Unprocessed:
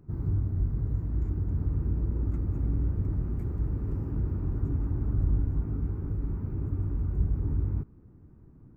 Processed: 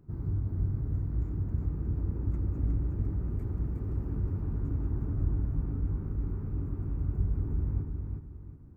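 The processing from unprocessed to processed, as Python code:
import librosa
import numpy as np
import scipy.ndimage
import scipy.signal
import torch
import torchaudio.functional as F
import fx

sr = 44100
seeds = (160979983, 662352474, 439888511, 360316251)

y = fx.echo_feedback(x, sr, ms=362, feedback_pct=33, wet_db=-4.5)
y = F.gain(torch.from_numpy(y), -3.5).numpy()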